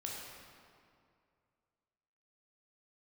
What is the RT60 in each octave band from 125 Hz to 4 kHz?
2.6 s, 2.4 s, 2.4 s, 2.3 s, 1.9 s, 1.5 s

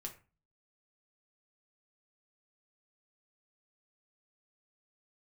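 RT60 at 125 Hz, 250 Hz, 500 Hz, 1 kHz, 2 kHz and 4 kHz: 0.55 s, 0.45 s, 0.30 s, 0.35 s, 0.30 s, 0.25 s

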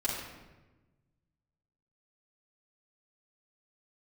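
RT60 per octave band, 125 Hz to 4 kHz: 2.0 s, 1.6 s, 1.3 s, 1.1 s, 1.0 s, 0.80 s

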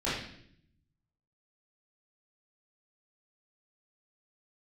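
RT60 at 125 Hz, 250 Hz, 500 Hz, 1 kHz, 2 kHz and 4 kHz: 1.4 s, 1.0 s, 0.75 s, 0.60 s, 0.65 s, 0.65 s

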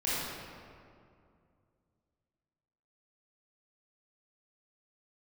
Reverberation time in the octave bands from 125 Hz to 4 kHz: 3.1 s, 2.8 s, 2.5 s, 2.3 s, 1.8 s, 1.3 s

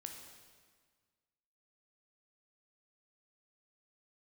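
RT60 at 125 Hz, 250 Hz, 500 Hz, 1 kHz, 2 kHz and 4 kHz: 1.8 s, 1.7 s, 1.6 s, 1.6 s, 1.5 s, 1.4 s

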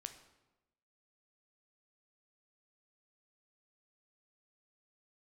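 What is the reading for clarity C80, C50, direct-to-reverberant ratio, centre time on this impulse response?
13.0 dB, 10.5 dB, 7.5 dB, 13 ms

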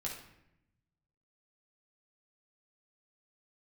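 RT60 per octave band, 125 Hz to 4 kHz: 1.6 s, 1.2 s, 0.90 s, 0.75 s, 0.80 s, 0.60 s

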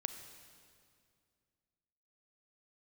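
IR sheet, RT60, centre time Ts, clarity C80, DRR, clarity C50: 2.3 s, 24 ms, 9.5 dB, 8.5 dB, 9.0 dB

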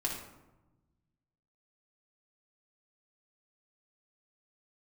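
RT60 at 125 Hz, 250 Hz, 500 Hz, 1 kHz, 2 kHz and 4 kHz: 2.0 s, 1.6 s, 1.1 s, 1.0 s, 0.75 s, 0.50 s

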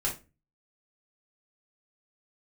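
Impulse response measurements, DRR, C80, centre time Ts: -4.5 dB, 17.5 dB, 21 ms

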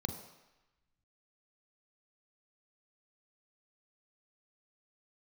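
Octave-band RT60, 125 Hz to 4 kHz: 0.85 s, 0.85 s, 0.95 s, 1.1 s, 1.2 s, 1.0 s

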